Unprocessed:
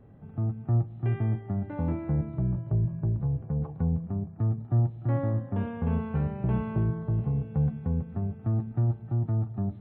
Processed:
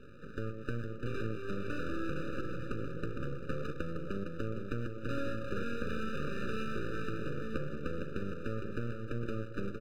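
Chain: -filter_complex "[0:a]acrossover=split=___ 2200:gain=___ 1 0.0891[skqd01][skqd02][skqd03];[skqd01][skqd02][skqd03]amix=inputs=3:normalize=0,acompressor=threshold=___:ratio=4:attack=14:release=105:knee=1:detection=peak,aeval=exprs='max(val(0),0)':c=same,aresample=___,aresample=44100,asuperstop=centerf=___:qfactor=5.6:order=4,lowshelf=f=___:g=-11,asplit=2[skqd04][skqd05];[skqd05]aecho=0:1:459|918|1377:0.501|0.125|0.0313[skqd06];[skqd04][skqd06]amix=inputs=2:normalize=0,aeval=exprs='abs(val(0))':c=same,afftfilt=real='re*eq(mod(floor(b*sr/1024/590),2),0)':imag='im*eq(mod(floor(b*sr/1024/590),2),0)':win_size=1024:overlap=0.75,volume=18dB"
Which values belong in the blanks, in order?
320, 0.141, -45dB, 8000, 1700, 140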